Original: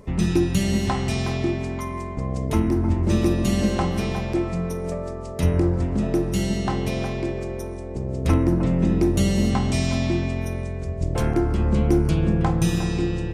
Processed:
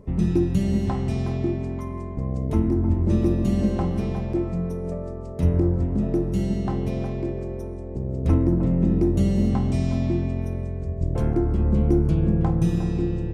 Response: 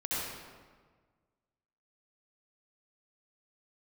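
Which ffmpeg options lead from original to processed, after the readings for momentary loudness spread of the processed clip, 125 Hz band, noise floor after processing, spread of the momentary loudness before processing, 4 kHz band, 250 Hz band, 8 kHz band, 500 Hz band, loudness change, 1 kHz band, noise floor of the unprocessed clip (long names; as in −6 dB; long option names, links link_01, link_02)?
10 LU, 0.0 dB, −32 dBFS, 10 LU, below −10 dB, −0.5 dB, below −10 dB, −2.0 dB, −0.5 dB, −6.0 dB, −31 dBFS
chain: -af "tiltshelf=frequency=920:gain=7,volume=-6.5dB"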